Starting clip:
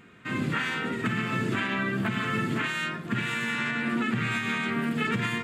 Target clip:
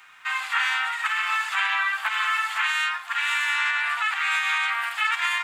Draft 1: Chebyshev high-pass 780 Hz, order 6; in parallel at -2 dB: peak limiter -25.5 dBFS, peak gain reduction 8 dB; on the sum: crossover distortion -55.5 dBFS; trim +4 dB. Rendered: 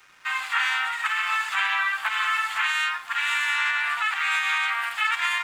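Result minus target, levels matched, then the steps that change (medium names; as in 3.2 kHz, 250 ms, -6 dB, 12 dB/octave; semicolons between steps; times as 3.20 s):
crossover distortion: distortion +10 dB
change: crossover distortion -65.5 dBFS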